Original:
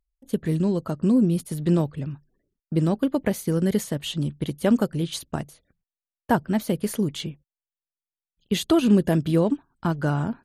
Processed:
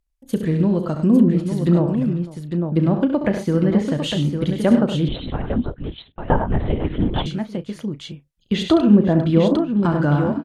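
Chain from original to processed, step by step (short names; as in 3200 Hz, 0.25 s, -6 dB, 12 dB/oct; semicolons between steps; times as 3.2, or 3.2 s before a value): treble ducked by the level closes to 1200 Hz, closed at -15.5 dBFS; notch 420 Hz, Q 12; doubler 34 ms -14 dB; tapped delay 68/100/501/853 ms -9/-9.5/-20/-6.5 dB; 5.08–7.26 LPC vocoder at 8 kHz whisper; gain +4 dB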